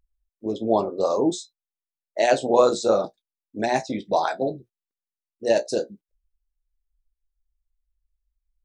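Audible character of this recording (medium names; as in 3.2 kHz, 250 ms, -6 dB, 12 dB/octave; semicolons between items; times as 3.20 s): noise floor -92 dBFS; spectral tilt -4.5 dB/octave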